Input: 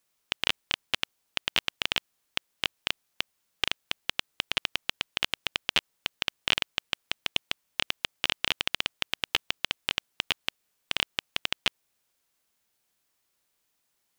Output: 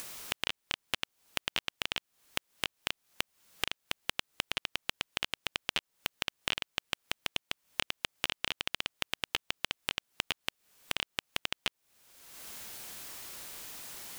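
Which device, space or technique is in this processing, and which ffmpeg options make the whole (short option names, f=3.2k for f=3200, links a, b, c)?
upward and downward compression: -af "acompressor=mode=upward:threshold=-27dB:ratio=2.5,acompressor=threshold=-33dB:ratio=6,volume=4dB"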